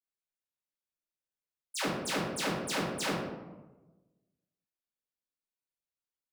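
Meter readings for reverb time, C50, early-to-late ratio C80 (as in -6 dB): 1.2 s, 0.5 dB, 4.0 dB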